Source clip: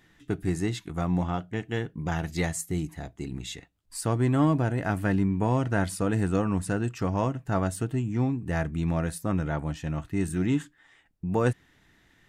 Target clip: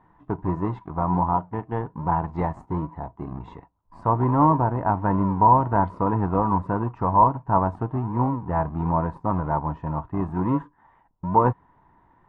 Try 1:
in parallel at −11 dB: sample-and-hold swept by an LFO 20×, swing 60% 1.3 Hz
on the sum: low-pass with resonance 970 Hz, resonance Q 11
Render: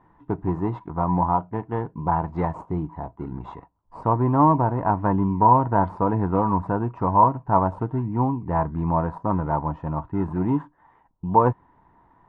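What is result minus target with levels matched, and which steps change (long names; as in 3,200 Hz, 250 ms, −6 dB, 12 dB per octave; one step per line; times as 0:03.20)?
sample-and-hold swept by an LFO: distortion −11 dB
change: sample-and-hold swept by an LFO 75×, swing 60% 1.3 Hz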